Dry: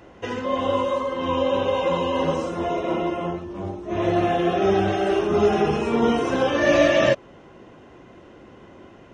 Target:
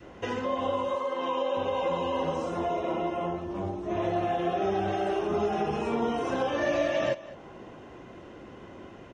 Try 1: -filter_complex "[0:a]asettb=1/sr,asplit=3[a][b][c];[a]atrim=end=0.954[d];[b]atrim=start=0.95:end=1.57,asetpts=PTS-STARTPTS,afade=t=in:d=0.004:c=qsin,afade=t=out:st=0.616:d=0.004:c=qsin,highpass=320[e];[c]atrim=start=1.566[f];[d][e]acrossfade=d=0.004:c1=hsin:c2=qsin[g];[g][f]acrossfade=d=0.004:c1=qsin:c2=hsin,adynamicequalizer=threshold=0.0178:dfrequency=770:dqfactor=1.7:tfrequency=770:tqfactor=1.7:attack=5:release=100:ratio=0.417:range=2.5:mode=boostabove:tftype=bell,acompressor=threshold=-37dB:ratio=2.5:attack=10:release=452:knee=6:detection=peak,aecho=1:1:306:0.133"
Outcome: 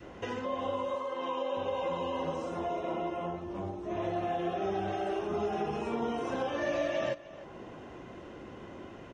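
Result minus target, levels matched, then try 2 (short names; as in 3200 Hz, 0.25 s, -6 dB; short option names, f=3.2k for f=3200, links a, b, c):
echo 0.102 s late; compressor: peak gain reduction +5 dB
-filter_complex "[0:a]asettb=1/sr,asplit=3[a][b][c];[a]atrim=end=0.954[d];[b]atrim=start=0.95:end=1.57,asetpts=PTS-STARTPTS,afade=t=in:d=0.004:c=qsin,afade=t=out:st=0.616:d=0.004:c=qsin,highpass=320[e];[c]atrim=start=1.566[f];[d][e]acrossfade=d=0.004:c1=hsin:c2=qsin[g];[g][f]acrossfade=d=0.004:c1=qsin:c2=hsin,adynamicequalizer=threshold=0.0178:dfrequency=770:dqfactor=1.7:tfrequency=770:tqfactor=1.7:attack=5:release=100:ratio=0.417:range=2.5:mode=boostabove:tftype=bell,acompressor=threshold=-29dB:ratio=2.5:attack=10:release=452:knee=6:detection=peak,aecho=1:1:204:0.133"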